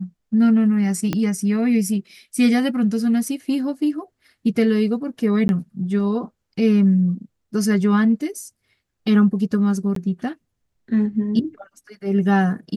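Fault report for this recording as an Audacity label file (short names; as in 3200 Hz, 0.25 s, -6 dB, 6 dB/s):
1.130000	1.130000	pop -9 dBFS
5.480000	5.490000	gap 11 ms
9.950000	9.960000	gap 13 ms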